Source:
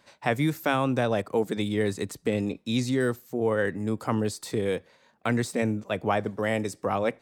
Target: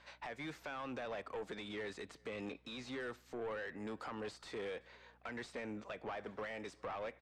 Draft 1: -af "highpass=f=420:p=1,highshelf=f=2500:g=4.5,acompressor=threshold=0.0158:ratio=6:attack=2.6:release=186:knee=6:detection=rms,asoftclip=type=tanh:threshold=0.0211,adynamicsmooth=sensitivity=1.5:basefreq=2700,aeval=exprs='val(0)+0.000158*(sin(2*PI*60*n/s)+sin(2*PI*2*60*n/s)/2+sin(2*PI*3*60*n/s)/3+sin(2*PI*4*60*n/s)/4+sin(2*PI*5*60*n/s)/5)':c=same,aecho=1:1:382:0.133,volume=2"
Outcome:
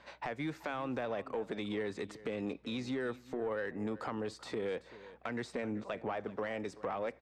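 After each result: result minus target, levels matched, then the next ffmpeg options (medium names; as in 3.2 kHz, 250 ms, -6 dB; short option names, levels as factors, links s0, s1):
echo-to-direct +11 dB; saturation: distortion -10 dB; 2 kHz band -3.0 dB
-af "highpass=f=420:p=1,highshelf=f=2500:g=4.5,acompressor=threshold=0.0158:ratio=6:attack=2.6:release=186:knee=6:detection=rms,asoftclip=type=tanh:threshold=0.0211,adynamicsmooth=sensitivity=1.5:basefreq=2700,aeval=exprs='val(0)+0.000158*(sin(2*PI*60*n/s)+sin(2*PI*2*60*n/s)/2+sin(2*PI*3*60*n/s)/3+sin(2*PI*4*60*n/s)/4+sin(2*PI*5*60*n/s)/5)':c=same,aecho=1:1:382:0.0376,volume=2"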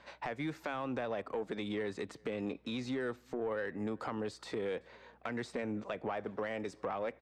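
saturation: distortion -10 dB; 2 kHz band -3.0 dB
-af "highpass=f=420:p=1,highshelf=f=2500:g=4.5,acompressor=threshold=0.0158:ratio=6:attack=2.6:release=186:knee=6:detection=rms,asoftclip=type=tanh:threshold=0.00668,adynamicsmooth=sensitivity=1.5:basefreq=2700,aeval=exprs='val(0)+0.000158*(sin(2*PI*60*n/s)+sin(2*PI*2*60*n/s)/2+sin(2*PI*3*60*n/s)/3+sin(2*PI*4*60*n/s)/4+sin(2*PI*5*60*n/s)/5)':c=same,aecho=1:1:382:0.0376,volume=2"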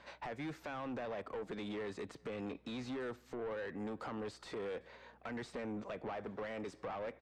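2 kHz band -3.5 dB
-af "highpass=f=1600:p=1,highshelf=f=2500:g=4.5,acompressor=threshold=0.0158:ratio=6:attack=2.6:release=186:knee=6:detection=rms,asoftclip=type=tanh:threshold=0.00668,adynamicsmooth=sensitivity=1.5:basefreq=2700,aeval=exprs='val(0)+0.000158*(sin(2*PI*60*n/s)+sin(2*PI*2*60*n/s)/2+sin(2*PI*3*60*n/s)/3+sin(2*PI*4*60*n/s)/4+sin(2*PI*5*60*n/s)/5)':c=same,aecho=1:1:382:0.0376,volume=2"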